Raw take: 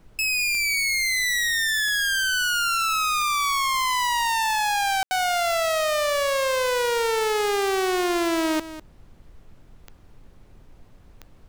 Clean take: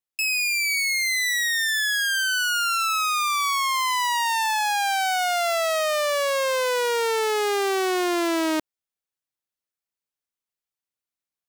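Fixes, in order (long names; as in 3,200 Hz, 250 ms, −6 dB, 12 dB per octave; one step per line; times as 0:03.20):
click removal
ambience match 0:05.03–0:05.11
noise reduction from a noise print 30 dB
echo removal 200 ms −14 dB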